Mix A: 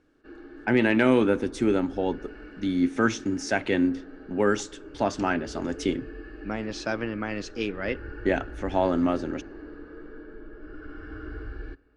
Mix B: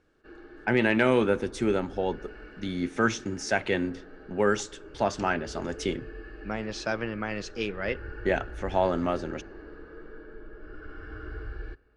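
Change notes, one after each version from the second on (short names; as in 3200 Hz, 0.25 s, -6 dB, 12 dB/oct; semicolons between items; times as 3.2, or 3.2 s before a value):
master: add bell 280 Hz -10 dB 0.36 oct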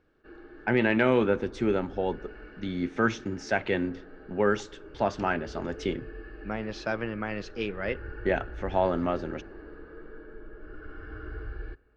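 master: add air absorption 140 m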